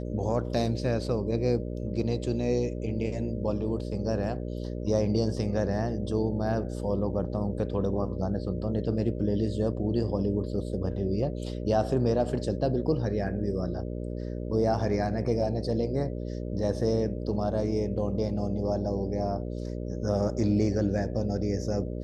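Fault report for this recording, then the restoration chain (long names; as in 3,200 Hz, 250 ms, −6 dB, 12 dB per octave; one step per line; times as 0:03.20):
mains buzz 60 Hz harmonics 10 −34 dBFS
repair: hum removal 60 Hz, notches 10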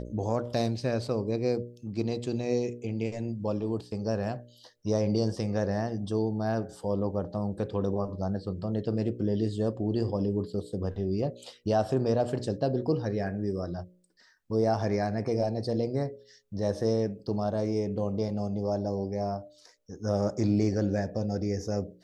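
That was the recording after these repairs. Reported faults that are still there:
none of them is left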